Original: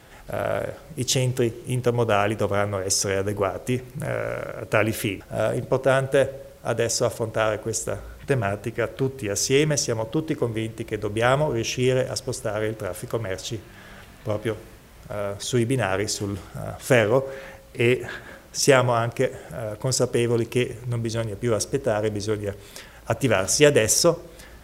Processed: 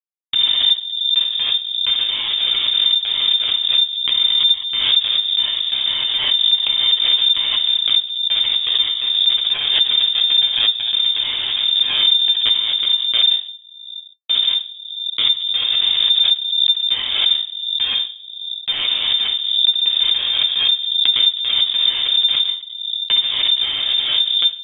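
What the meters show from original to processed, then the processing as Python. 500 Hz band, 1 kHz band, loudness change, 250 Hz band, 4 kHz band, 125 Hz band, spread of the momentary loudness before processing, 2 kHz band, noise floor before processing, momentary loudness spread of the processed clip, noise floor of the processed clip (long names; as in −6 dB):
below −20 dB, −9.0 dB, +9.5 dB, below −20 dB, +22.5 dB, below −20 dB, 14 LU, −0.5 dB, −46 dBFS, 6 LU, −36 dBFS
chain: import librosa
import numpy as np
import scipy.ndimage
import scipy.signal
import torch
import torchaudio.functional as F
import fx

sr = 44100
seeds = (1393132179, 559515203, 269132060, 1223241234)

p1 = scipy.ndimage.median_filter(x, 15, mode='constant')
p2 = scipy.signal.sosfilt(scipy.signal.butter(4, 190.0, 'highpass', fs=sr, output='sos'), p1)
p3 = fx.dynamic_eq(p2, sr, hz=1600.0, q=2.4, threshold_db=-41.0, ratio=4.0, max_db=3)
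p4 = p3 + fx.echo_multitap(p3, sr, ms=(54, 363), db=(-5.0, -11.0), dry=0)
p5 = fx.schmitt(p4, sr, flips_db=-20.0)
p6 = fx.room_shoebox(p5, sr, seeds[0], volume_m3=34.0, walls='mixed', distance_m=0.66)
p7 = fx.freq_invert(p6, sr, carrier_hz=3600)
p8 = fx.pre_swell(p7, sr, db_per_s=43.0)
y = p8 * 10.0 ** (-4.0 / 20.0)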